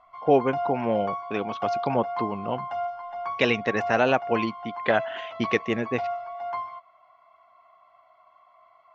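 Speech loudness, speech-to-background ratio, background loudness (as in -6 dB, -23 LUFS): -26.5 LUFS, 6.5 dB, -33.0 LUFS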